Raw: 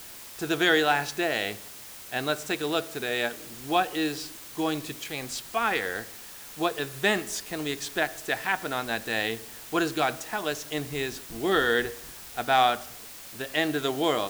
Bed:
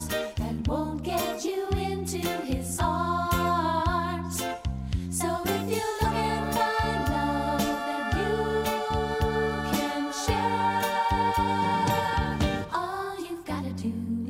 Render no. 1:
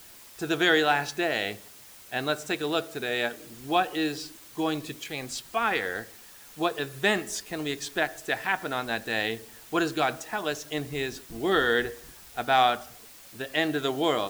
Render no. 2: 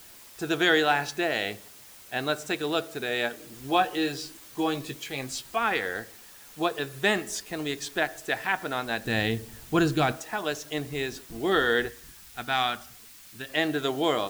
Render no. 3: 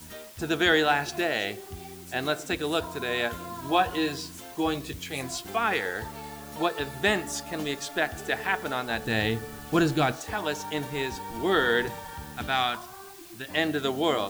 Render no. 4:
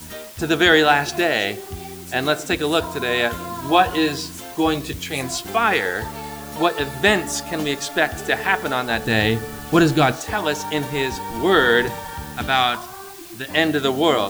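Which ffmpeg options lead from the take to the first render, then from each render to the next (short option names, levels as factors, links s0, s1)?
-af "afftdn=nr=6:nf=-44"
-filter_complex "[0:a]asettb=1/sr,asplit=3[s0][s1][s2];[s0]atrim=end=3.524[s3];[s1]atrim=start=3.52:end=5.56,asetpts=PTS-STARTPTS,afade=t=in:d=0.004:c=qsin,afade=t=out:st=2.036:d=0.004:c=qsin,asplit=2[s4][s5];[s5]adelay=15,volume=0.447[s6];[s4][s6]amix=inputs=2:normalize=0,atrim=end_sample=89964[s7];[s2]atrim=start=5.556[s8];[s3][s7]acrossfade=d=0.004:c1=hsin:c2=qsin[s9];[s9][s8]acrossfade=d=0.004:c1=qsin:c2=hsin,asettb=1/sr,asplit=3[s10][s11][s12];[s10]atrim=end=9.044[s13];[s11]atrim=start=9.04:end=10.12,asetpts=PTS-STARTPTS,afade=t=in:d=0.004:c=qsin,afade=t=out:st=1.076:d=0.004:c=qsin,bass=f=250:g=14,treble=f=4000:g=1[s14];[s12]atrim=start=10.116[s15];[s13][s14]acrossfade=d=0.004:c1=hsin:c2=qsin[s16];[s16][s15]acrossfade=d=0.004:c1=qsin:c2=hsin,asettb=1/sr,asplit=3[s17][s18][s19];[s17]atrim=end=11.884[s20];[s18]atrim=start=11.88:end=13.49,asetpts=PTS-STARTPTS,afade=t=in:d=0.004:c=qsin,afade=t=out:st=1.606:d=0.004:c=qsin,equalizer=f=560:t=o:w=1.4:g=-10.5[s21];[s19]atrim=start=13.486[s22];[s20][s21]acrossfade=d=0.004:c1=hsin:c2=qsin[s23];[s23][s22]acrossfade=d=0.004:c1=qsin:c2=hsin"
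-filter_complex "[1:a]volume=0.2[s0];[0:a][s0]amix=inputs=2:normalize=0"
-af "volume=2.51,alimiter=limit=0.891:level=0:latency=1"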